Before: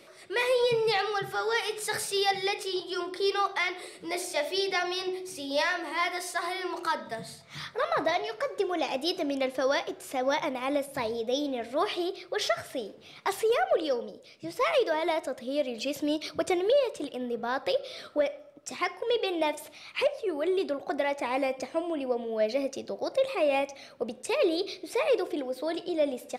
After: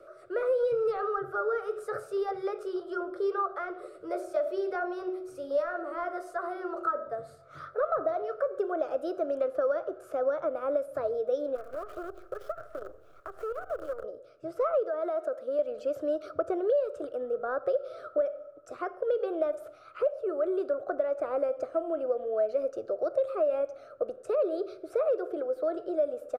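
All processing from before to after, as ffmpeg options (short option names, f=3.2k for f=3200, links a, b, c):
-filter_complex "[0:a]asettb=1/sr,asplit=3[a][b][c];[a]atrim=end=11.554[d];[b]atrim=start=11.55:end=14.04,asetpts=PTS-STARTPTS,afade=t=in:d=0.004:c=qsin,afade=t=out:st=2.486:d=0.004:c=qsin,aemphasis=mode=reproduction:type=50fm,acompressor=threshold=-36dB:ratio=8:attack=3.2:release=140:knee=1:detection=peak,acrusher=bits=7:dc=4:mix=0:aa=0.000001[e];[c]atrim=start=14.036[f];[d][e]acrossfade=d=0.004:c1=hsin:c2=qsin[g];[g][f]acrossfade=d=0.004:c1=qsin:c2=hsin,asettb=1/sr,asplit=3[h][i][j];[h]atrim=end=14.854[k];[i]atrim=start=14.85:end=15.59,asetpts=PTS-STARTPTS,afade=t=in:d=0.004:c=qsin,afade=t=out:st=0.736:d=0.004:c=qsin,highpass=240,acompressor=threshold=-29dB:ratio=4:attack=3.2:release=140:knee=1:detection=peak[l];[j]atrim=start=15.586[m];[k][l]acrossfade=d=0.004:c1=hsin:c2=qsin[n];[n][m]acrossfade=d=0.004:c1=qsin:c2=hsin,firequalizer=gain_entry='entry(120,0);entry(180,-23);entry(340,-5);entry(620,3);entry(900,-21);entry(1300,5);entry(1900,-21);entry(3600,-25);entry(6600,-22);entry(12000,-20)':delay=0.05:min_phase=1,acrossover=split=300|1700[o][p][q];[o]acompressor=threshold=-48dB:ratio=4[r];[p]acompressor=threshold=-30dB:ratio=4[s];[q]acompressor=threshold=-59dB:ratio=4[t];[r][s][t]amix=inputs=3:normalize=0,equalizer=f=100:t=o:w=0.77:g=-7.5,volume=4.5dB"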